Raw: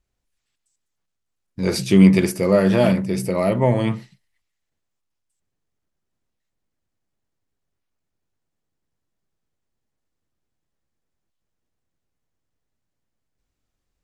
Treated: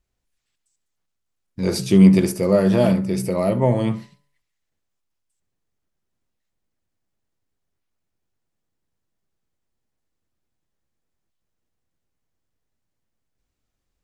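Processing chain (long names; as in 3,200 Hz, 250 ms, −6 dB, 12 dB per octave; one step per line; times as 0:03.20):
hum removal 143.1 Hz, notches 12
dynamic equaliser 2,100 Hz, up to −6 dB, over −37 dBFS, Q 0.97
flutter between parallel walls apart 11.7 metres, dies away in 0.22 s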